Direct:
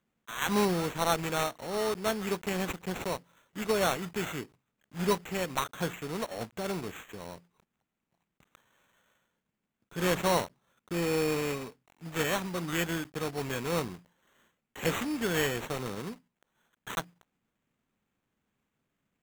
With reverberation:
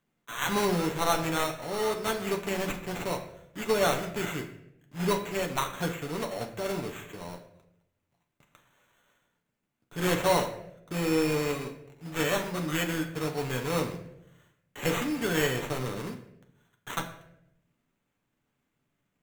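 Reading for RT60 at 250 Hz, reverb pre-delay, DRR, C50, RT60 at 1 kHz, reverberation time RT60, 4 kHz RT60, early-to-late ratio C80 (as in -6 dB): 1.0 s, 7 ms, 2.5 dB, 10.0 dB, 0.65 s, 0.80 s, 0.55 s, 12.0 dB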